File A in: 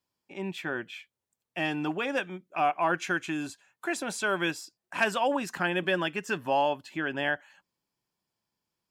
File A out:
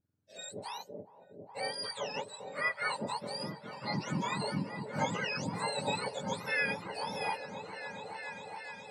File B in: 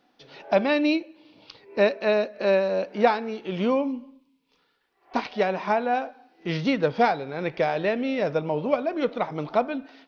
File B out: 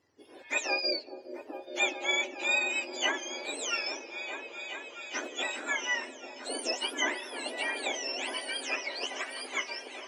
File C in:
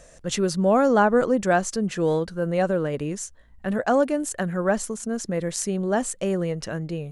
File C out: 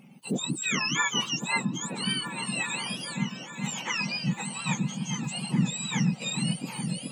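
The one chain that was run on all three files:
spectrum mirrored in octaves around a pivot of 1200 Hz; repeats that get brighter 0.417 s, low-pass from 400 Hz, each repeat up 1 oct, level -3 dB; gain -5 dB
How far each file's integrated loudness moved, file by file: -6.5, -7.0, -5.5 LU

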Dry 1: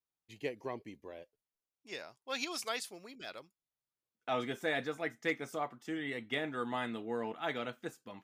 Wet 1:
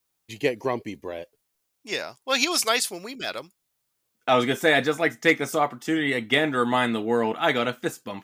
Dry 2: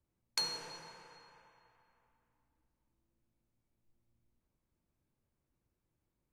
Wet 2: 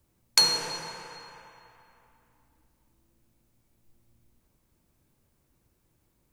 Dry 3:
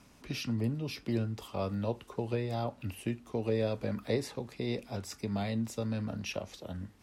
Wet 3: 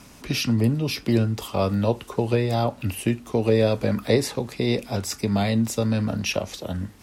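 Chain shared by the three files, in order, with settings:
high shelf 6100 Hz +5.5 dB; match loudness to -24 LUFS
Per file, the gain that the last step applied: +14.5, +13.0, +11.5 dB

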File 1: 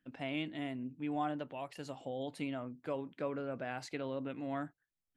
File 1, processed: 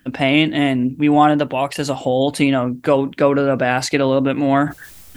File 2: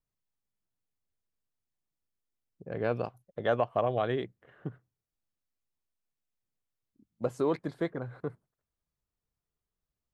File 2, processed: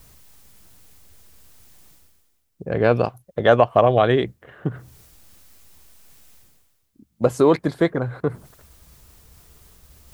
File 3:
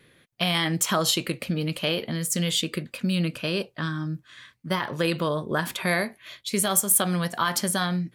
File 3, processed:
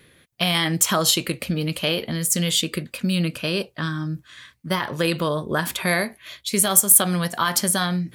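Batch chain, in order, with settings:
bell 69 Hz +10.5 dB 0.4 oct; reverse; upward compressor, threshold -44 dBFS; reverse; high shelf 5900 Hz +5.5 dB; normalise peaks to -1.5 dBFS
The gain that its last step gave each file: +23.0, +13.0, +2.5 dB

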